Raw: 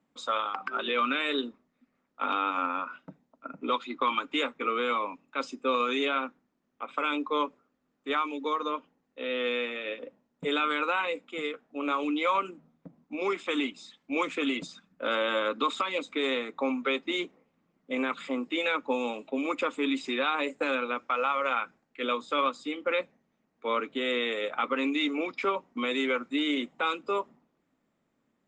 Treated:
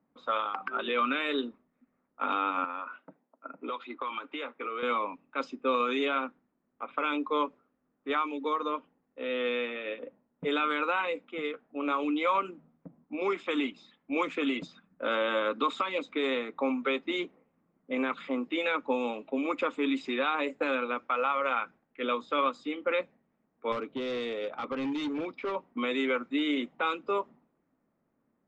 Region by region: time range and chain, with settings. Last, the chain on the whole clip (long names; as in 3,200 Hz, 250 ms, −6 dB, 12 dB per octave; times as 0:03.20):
0:02.64–0:04.83: high-pass filter 330 Hz + downward compressor 3 to 1, threshold −32 dBFS
0:23.72–0:25.55: parametric band 1,800 Hz −7.5 dB 1.5 octaves + gain into a clipping stage and back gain 29 dB
whole clip: low-pass filter 3,000 Hz 6 dB per octave; low-pass that shuts in the quiet parts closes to 1,700 Hz, open at −25 dBFS